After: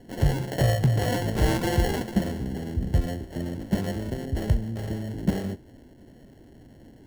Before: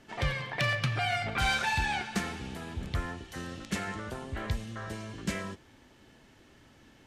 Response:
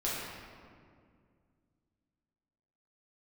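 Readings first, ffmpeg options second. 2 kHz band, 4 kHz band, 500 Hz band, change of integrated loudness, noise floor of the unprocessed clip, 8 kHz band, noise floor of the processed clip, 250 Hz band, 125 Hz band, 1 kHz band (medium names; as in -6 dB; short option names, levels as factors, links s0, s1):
-5.0 dB, -1.5 dB, +9.5 dB, +5.5 dB, -59 dBFS, +3.0 dB, -51 dBFS, +11.0 dB, +10.5 dB, -1.0 dB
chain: -filter_complex "[0:a]acrossover=split=460[s0][s1];[s0]acontrast=38[s2];[s1]acrusher=samples=36:mix=1:aa=0.000001[s3];[s2][s3]amix=inputs=2:normalize=0,volume=1.68"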